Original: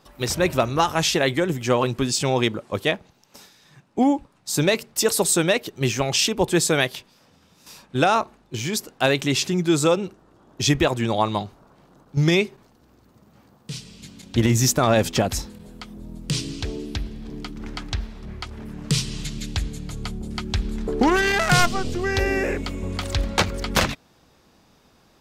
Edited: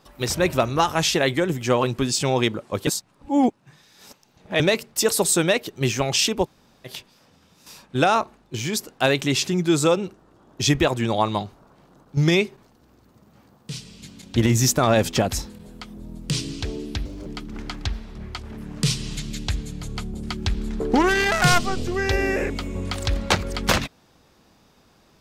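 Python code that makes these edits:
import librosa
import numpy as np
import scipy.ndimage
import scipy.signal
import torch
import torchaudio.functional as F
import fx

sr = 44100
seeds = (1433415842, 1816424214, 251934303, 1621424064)

y = fx.edit(x, sr, fx.reverse_span(start_s=2.87, length_s=1.73),
    fx.room_tone_fill(start_s=6.44, length_s=0.43, crossfade_s=0.06),
    fx.speed_span(start_s=17.05, length_s=0.29, speed=1.35), tone=tone)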